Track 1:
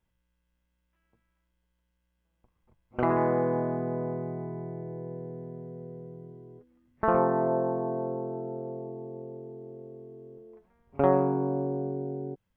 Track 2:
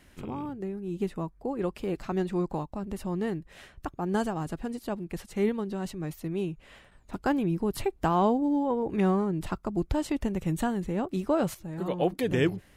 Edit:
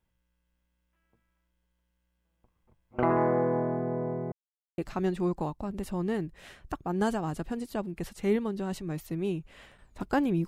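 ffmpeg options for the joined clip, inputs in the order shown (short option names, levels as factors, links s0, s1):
-filter_complex "[0:a]apad=whole_dur=10.47,atrim=end=10.47,asplit=2[s0][s1];[s0]atrim=end=4.32,asetpts=PTS-STARTPTS,afade=t=out:st=4.316:d=0.004:c=hsin[s2];[s1]atrim=start=4.32:end=4.78,asetpts=PTS-STARTPTS,volume=0[s3];[1:a]atrim=start=1.91:end=7.6,asetpts=PTS-STARTPTS,afade=t=in:d=0.004:c=hsin[s4];[s2][s3][s4]concat=n=3:v=0:a=1"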